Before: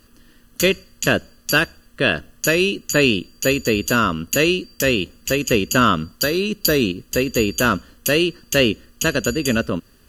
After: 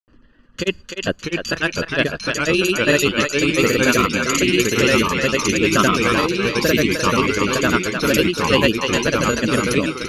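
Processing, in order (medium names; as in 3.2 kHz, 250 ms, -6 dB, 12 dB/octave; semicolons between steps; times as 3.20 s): granulator 100 ms, grains 20 per s, pitch spread up and down by 0 st; reverb removal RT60 0.65 s; thinning echo 303 ms, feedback 19%, high-pass 560 Hz, level -4.5 dB; level-controlled noise filter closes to 2.1 kHz, open at -14.5 dBFS; ever faster or slower copies 572 ms, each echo -2 st, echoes 2; trim +1.5 dB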